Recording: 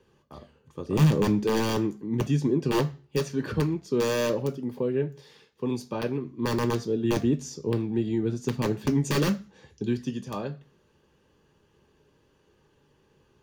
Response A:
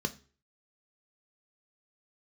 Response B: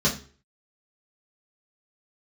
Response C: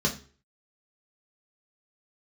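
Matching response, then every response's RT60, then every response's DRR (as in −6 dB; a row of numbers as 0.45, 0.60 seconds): A; 0.40, 0.40, 0.40 seconds; 8.0, −5.5, −0.5 decibels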